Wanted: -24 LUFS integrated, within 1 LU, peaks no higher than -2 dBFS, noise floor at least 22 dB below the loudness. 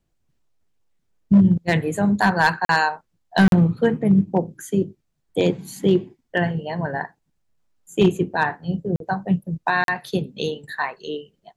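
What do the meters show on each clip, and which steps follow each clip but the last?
clipped samples 0.6%; clipping level -8.0 dBFS; dropouts 4; longest dropout 42 ms; loudness -21.0 LUFS; peak level -8.0 dBFS; loudness target -24.0 LUFS
-> clip repair -8 dBFS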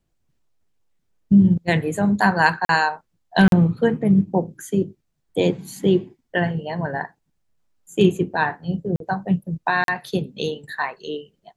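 clipped samples 0.0%; dropouts 4; longest dropout 42 ms
-> interpolate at 2.65/3.48/8.96/9.84 s, 42 ms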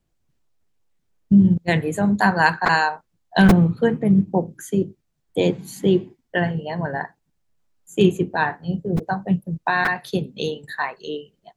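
dropouts 0; loudness -20.5 LUFS; peak level -1.5 dBFS; loudness target -24.0 LUFS
-> trim -3.5 dB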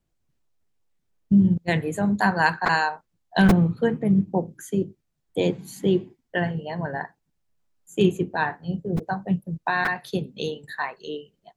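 loudness -24.0 LUFS; peak level -5.0 dBFS; noise floor -75 dBFS

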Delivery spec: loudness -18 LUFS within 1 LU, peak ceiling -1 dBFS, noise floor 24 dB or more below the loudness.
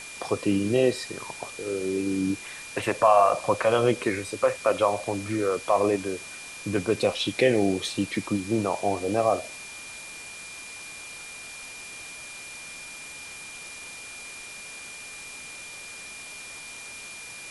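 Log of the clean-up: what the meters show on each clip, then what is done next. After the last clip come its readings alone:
steady tone 2.4 kHz; tone level -41 dBFS; noise floor -41 dBFS; noise floor target -50 dBFS; loudness -25.5 LUFS; peak level -6.5 dBFS; loudness target -18.0 LUFS
-> band-stop 2.4 kHz, Q 30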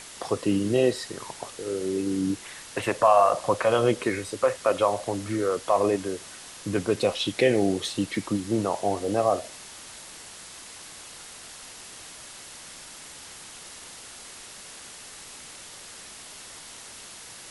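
steady tone not found; noise floor -44 dBFS; noise floor target -50 dBFS
-> noise reduction 6 dB, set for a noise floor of -44 dBFS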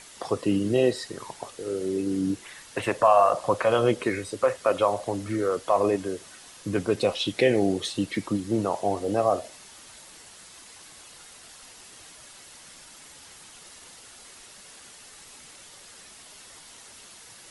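noise floor -49 dBFS; noise floor target -50 dBFS
-> noise reduction 6 dB, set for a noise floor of -49 dBFS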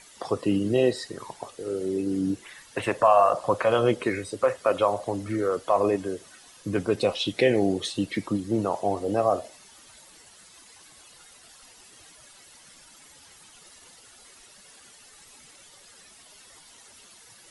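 noise floor -52 dBFS; loudness -25.5 LUFS; peak level -7.0 dBFS; loudness target -18.0 LUFS
-> trim +7.5 dB; peak limiter -1 dBFS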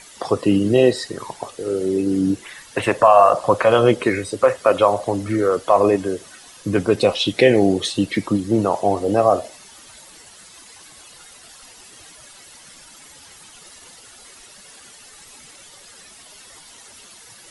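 loudness -18.0 LUFS; peak level -1.0 dBFS; noise floor -45 dBFS

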